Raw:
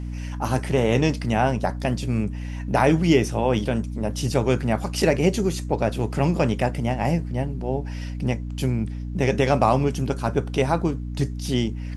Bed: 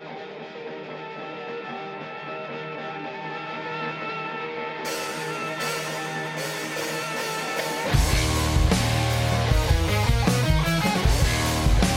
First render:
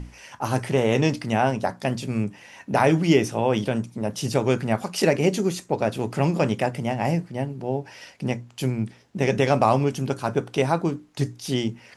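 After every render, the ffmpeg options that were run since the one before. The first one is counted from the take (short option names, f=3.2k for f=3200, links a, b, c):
-af "bandreject=f=60:t=h:w=6,bandreject=f=120:t=h:w=6,bandreject=f=180:t=h:w=6,bandreject=f=240:t=h:w=6,bandreject=f=300:t=h:w=6"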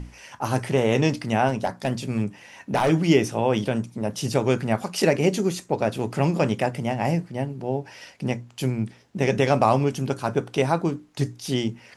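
-filter_complex "[0:a]asettb=1/sr,asplit=3[a][b][c];[a]atrim=end=1.484[d];[b]atrim=start=1.48:end=2.9,asetpts=PTS-STARTPTS,afade=t=in:d=0.004:c=qsin,afade=t=out:st=1.416:d=0.004:c=qsin,asoftclip=type=hard:threshold=-15.5dB[e];[c]atrim=start=2.896[f];[d][e]acrossfade=d=0.004:c1=hsin:c2=qsin[g];[g][f]acrossfade=d=0.004:c1=qsin:c2=hsin"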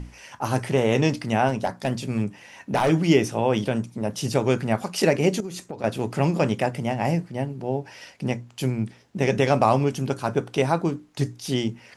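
-filter_complex "[0:a]asettb=1/sr,asplit=3[a][b][c];[a]atrim=end=5.404[d];[b]atrim=start=5.4:end=5.84,asetpts=PTS-STARTPTS,afade=t=in:d=0.004:c=qsin,afade=t=out:st=0.436:d=0.004:c=qsin,acompressor=threshold=-29dB:ratio=8:attack=3.2:release=140:knee=1:detection=peak[e];[c]atrim=start=5.836[f];[d][e]acrossfade=d=0.004:c1=hsin:c2=qsin[g];[g][f]acrossfade=d=0.004:c1=qsin:c2=hsin"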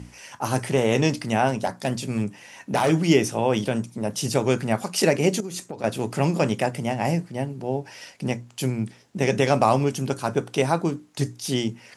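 -af "highpass=86,equalizer=f=9k:t=o:w=1.5:g=6"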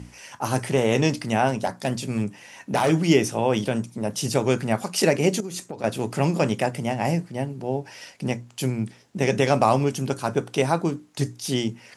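-af anull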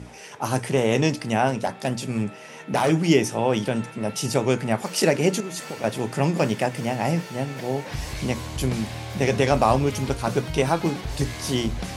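-filter_complex "[1:a]volume=-11dB[a];[0:a][a]amix=inputs=2:normalize=0"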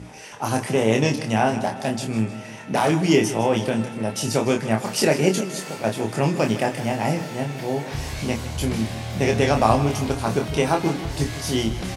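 -filter_complex "[0:a]asplit=2[a][b];[b]adelay=27,volume=-4.5dB[c];[a][c]amix=inputs=2:normalize=0,aecho=1:1:156|312|468|624|780:0.2|0.104|0.054|0.0281|0.0146"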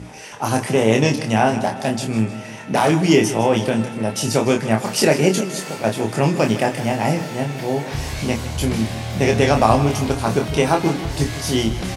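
-af "volume=3.5dB,alimiter=limit=-1dB:level=0:latency=1"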